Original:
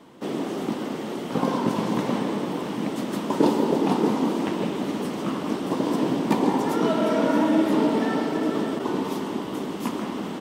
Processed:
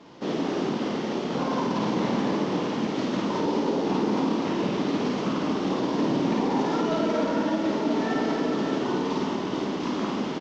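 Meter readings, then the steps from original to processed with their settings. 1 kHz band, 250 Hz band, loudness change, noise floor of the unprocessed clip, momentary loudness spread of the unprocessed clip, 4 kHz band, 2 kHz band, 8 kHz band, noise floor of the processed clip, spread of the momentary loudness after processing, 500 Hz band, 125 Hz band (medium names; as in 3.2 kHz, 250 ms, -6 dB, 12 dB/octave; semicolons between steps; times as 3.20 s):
-1.0 dB, -1.5 dB, -1.5 dB, -32 dBFS, 8 LU, +1.0 dB, 0.0 dB, -3.0 dB, -30 dBFS, 4 LU, -1.5 dB, -0.5 dB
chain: CVSD coder 32 kbps; peak limiter -19 dBFS, peak gain reduction 11 dB; on a send: loudspeakers at several distances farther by 18 m -2 dB, 33 m -11 dB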